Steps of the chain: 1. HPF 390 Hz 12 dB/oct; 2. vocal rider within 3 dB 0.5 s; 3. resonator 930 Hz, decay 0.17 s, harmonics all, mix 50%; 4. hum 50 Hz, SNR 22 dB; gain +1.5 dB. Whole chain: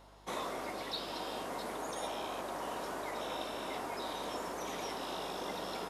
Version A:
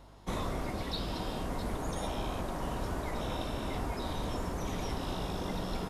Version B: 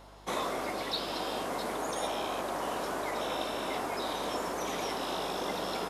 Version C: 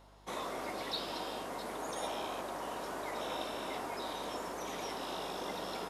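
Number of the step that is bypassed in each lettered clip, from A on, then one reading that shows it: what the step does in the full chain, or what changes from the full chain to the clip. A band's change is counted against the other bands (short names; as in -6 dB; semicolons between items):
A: 1, 125 Hz band +17.5 dB; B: 3, loudness change +5.5 LU; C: 2, momentary loudness spread change +2 LU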